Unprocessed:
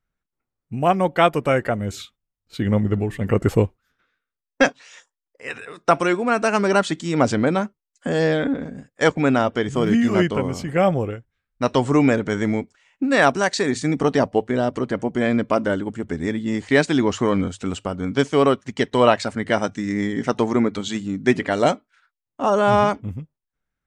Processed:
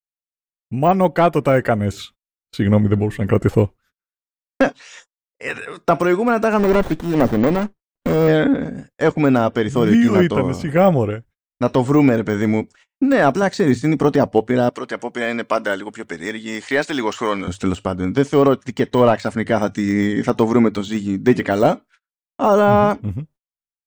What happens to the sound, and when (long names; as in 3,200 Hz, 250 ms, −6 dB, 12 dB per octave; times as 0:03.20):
0:06.59–0:08.28: windowed peak hold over 17 samples
0:13.42–0:13.82: bass and treble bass +7 dB, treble +3 dB
0:14.69–0:17.48: high-pass filter 1,100 Hz 6 dB per octave
whole clip: de-essing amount 95%; noise gate −49 dBFS, range −35 dB; automatic gain control gain up to 8 dB